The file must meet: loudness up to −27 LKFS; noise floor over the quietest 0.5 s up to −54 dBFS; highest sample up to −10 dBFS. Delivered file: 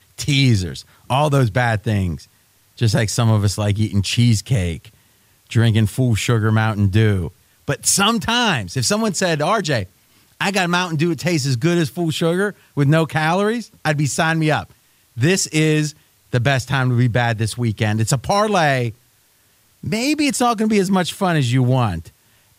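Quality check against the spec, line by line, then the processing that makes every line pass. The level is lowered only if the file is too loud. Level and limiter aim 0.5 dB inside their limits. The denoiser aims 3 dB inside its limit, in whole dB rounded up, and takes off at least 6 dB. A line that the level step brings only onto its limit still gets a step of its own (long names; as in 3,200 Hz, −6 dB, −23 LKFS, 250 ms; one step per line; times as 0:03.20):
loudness −18.0 LKFS: out of spec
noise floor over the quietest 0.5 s −57 dBFS: in spec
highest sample −4.5 dBFS: out of spec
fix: level −9.5 dB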